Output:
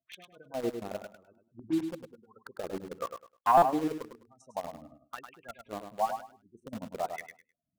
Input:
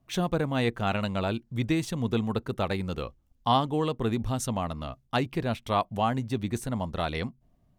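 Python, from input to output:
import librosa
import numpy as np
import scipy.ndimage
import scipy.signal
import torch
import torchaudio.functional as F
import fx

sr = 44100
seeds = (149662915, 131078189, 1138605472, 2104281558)

p1 = fx.chopper(x, sr, hz=11.0, depth_pct=60, duty_pct=60)
p2 = fx.spec_gate(p1, sr, threshold_db=-15, keep='strong')
p3 = fx.leveller(p2, sr, passes=3, at=(3.02, 3.63))
p4 = fx.wah_lfo(p3, sr, hz=0.99, low_hz=300.0, high_hz=2700.0, q=2.7)
p5 = fx.quant_dither(p4, sr, seeds[0], bits=6, dither='none')
p6 = p4 + (p5 * librosa.db_to_amplitude(-4.0))
p7 = fx.env_lowpass(p6, sr, base_hz=420.0, full_db=-23.5, at=(1.12, 1.87))
p8 = p7 + fx.echo_feedback(p7, sr, ms=103, feedback_pct=22, wet_db=-7.5, dry=0)
p9 = fx.buffer_glitch(p8, sr, at_s=(3.57,), block=256, repeats=8)
y = p9 * librosa.db_to_amplitude(-3.0)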